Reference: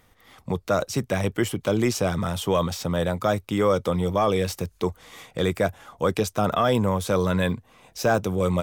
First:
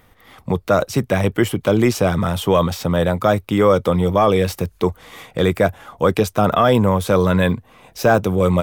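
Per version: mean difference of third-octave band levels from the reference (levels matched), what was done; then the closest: 1.0 dB: bell 6500 Hz -6 dB 1.4 oct; gain +7 dB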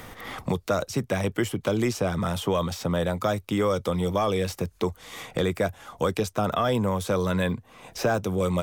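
2.5 dB: three-band squash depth 70%; gain -2.5 dB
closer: first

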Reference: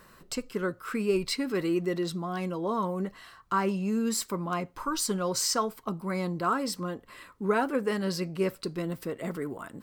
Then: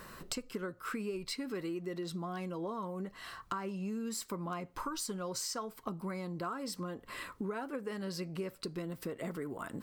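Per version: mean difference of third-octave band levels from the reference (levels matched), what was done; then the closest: 3.5 dB: compressor 10:1, threshold -41 dBFS, peak gain reduction 20.5 dB; gain +5 dB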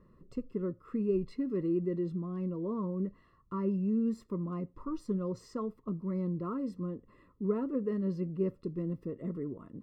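10.5 dB: running mean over 57 samples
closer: first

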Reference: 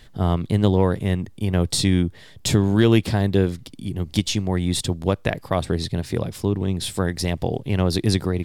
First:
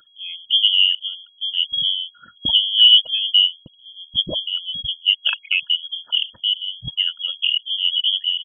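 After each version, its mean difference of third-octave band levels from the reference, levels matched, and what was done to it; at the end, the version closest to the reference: 23.0 dB: formant sharpening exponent 3; spectral noise reduction 18 dB; comb 2.6 ms, depth 68%; inverted band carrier 3300 Hz; gain +3 dB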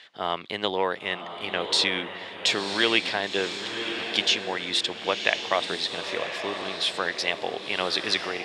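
12.0 dB: BPF 620–4900 Hz; bell 2700 Hz +8 dB 1.5 oct; diffused feedback echo 1.044 s, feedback 40%, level -7 dB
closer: second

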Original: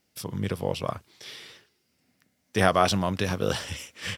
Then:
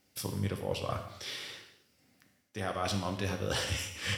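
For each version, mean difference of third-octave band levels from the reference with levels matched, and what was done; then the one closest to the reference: 7.5 dB: reverse; compressor 20:1, threshold -31 dBFS, peak gain reduction 17.5 dB; reverse; non-linear reverb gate 0.29 s falling, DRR 4 dB; gain +1 dB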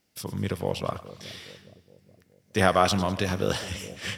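2.5 dB: on a send: split-band echo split 580 Hz, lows 0.417 s, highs 0.102 s, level -15 dB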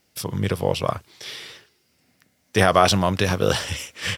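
1.0 dB: bell 230 Hz -3.5 dB 0.85 oct; maximiser +8 dB; gain -1 dB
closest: third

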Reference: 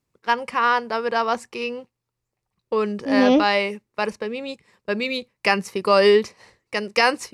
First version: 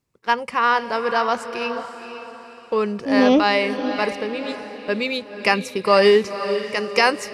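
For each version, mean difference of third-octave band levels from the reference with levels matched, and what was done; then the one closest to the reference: 4.0 dB: diffused feedback echo 0.504 s, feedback 42%, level -10 dB; gain +1 dB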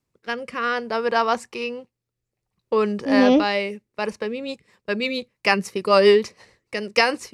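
1.5 dB: rotary speaker horn 0.6 Hz, later 6.7 Hz, at 3.95; gain +2 dB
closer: second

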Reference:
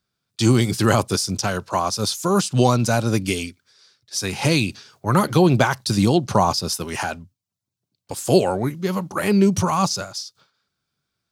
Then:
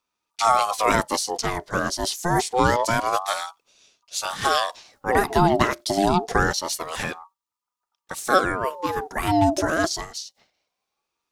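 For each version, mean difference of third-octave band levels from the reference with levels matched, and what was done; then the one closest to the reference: 8.0 dB: ring modulator with a swept carrier 790 Hz, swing 40%, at 0.26 Hz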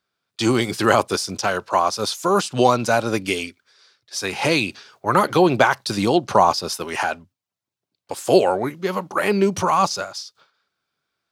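3.5 dB: tone controls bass -14 dB, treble -8 dB; gain +4 dB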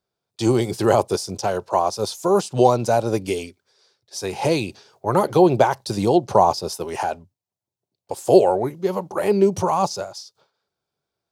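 5.0 dB: band shelf 580 Hz +11 dB; gain -6.5 dB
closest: second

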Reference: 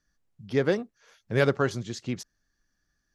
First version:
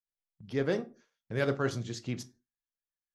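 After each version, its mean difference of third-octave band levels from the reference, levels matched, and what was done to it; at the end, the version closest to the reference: 3.0 dB: shoebox room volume 190 m³, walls furnished, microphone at 0.45 m; spectral noise reduction 10 dB; gate with hold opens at -41 dBFS; reverse; compressor, threshold -21 dBFS, peak gain reduction 5.5 dB; reverse; gain -3.5 dB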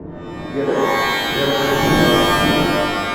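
15.5 dB: wind noise 180 Hz -26 dBFS; three-band isolator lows -14 dB, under 180 Hz, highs -22 dB, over 2000 Hz; in parallel at +1.5 dB: limiter -19.5 dBFS, peak gain reduction 8.5 dB; on the sum: shimmer reverb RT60 1.8 s, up +12 st, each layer -2 dB, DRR -7 dB; gain -5.5 dB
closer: first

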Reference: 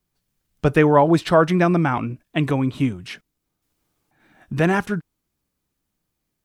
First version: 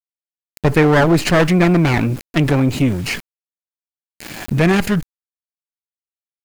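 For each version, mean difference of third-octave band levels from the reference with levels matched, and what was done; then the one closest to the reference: 7.5 dB: minimum comb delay 0.44 ms; bit-crush 9-bit; fast leveller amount 50%; gain +2 dB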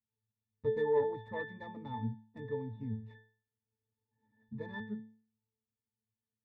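10.0 dB: tracing distortion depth 0.48 ms; high shelf 2300 Hz -7.5 dB; octave resonator A, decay 0.45 s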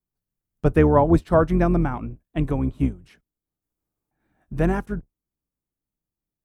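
5.5 dB: octaver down 2 oct, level -3 dB; bell 3400 Hz -10 dB 2.6 oct; upward expander 1.5:1, over -34 dBFS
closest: third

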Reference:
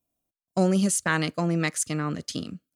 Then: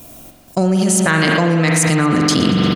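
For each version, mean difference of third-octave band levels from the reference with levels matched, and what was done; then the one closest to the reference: 9.0 dB: on a send: feedback echo 0.116 s, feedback 42%, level -18 dB; on the sum: spring tank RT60 2 s, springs 43 ms, chirp 30 ms, DRR 3.5 dB; fast leveller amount 100%; gain +3 dB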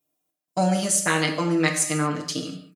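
6.5 dB: HPF 280 Hz 6 dB/oct; comb 6.6 ms, depth 83%; non-linear reverb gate 0.26 s falling, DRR 4 dB; gain +1.5 dB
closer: second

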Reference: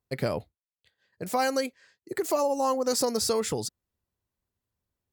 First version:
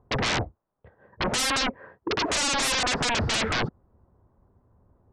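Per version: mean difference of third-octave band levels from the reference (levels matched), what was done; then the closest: 14.5 dB: LPF 1100 Hz 24 dB/oct; in parallel at -1 dB: negative-ratio compressor -29 dBFS, ratio -0.5; on the sum: limiter -17 dBFS, peak gain reduction 5.5 dB; sine folder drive 19 dB, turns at -17 dBFS; gain -5 dB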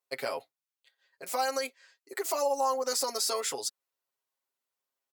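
5.5 dB: HPF 670 Hz 12 dB/oct; notch 1700 Hz, Q 15; comb 7.4 ms, depth 95%; limiter -17.5 dBFS, peak gain reduction 5 dB; gain -1.5 dB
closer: second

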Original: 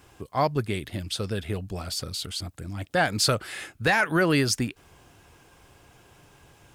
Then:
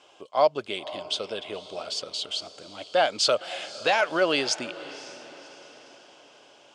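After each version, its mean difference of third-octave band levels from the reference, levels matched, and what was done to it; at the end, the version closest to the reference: 9.0 dB: speaker cabinet 440–7100 Hz, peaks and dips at 600 Hz +9 dB, 1800 Hz -9 dB, 3100 Hz +9 dB; diffused feedback echo 0.54 s, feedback 47%, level -16 dB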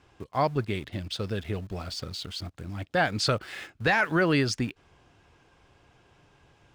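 3.0 dB: LPF 5000 Hz 12 dB/oct; in parallel at -6 dB: sample gate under -37 dBFS; on the sum: gain -5 dB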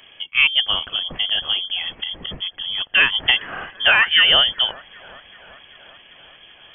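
15.5 dB: on a send: thin delay 0.386 s, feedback 68%, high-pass 2300 Hz, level -16 dB; on the sum: inverted band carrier 3300 Hz; gain +7.5 dB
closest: second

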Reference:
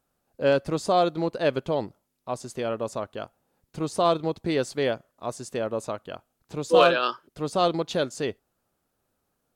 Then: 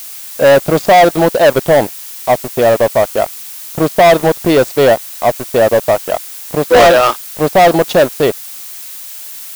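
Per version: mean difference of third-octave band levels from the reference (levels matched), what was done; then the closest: 8.0 dB: low-pass opened by the level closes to 1600 Hz, open at -20.5 dBFS; bell 690 Hz +11.5 dB 0.95 oct; sample leveller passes 5; added noise blue -25 dBFS; gain -4 dB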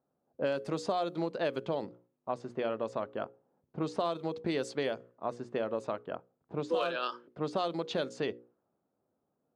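4.0 dB: low-pass opened by the level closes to 730 Hz, open at -20 dBFS; HPF 150 Hz 12 dB/oct; notches 60/120/180/240/300/360/420/480/540 Hz; compressor 6:1, threshold -29 dBFS, peak gain reduction 15 dB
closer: second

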